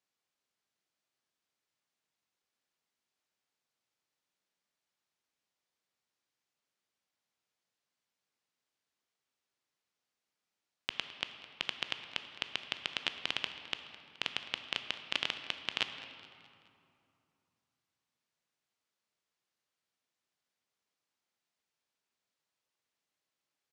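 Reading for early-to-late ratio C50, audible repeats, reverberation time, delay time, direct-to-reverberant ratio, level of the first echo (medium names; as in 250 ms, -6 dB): 8.0 dB, 4, 2.7 s, 212 ms, 7.5 dB, -17.5 dB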